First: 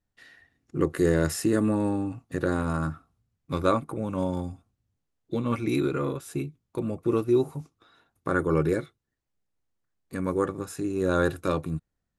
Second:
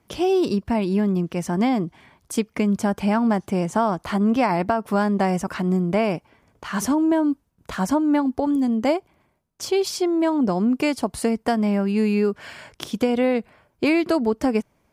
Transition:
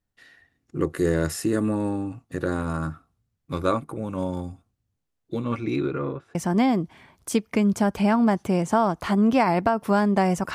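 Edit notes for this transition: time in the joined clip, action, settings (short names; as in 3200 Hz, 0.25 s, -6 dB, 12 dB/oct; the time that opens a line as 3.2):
first
5.44–6.35 LPF 7500 Hz -> 1400 Hz
6.35 switch to second from 1.38 s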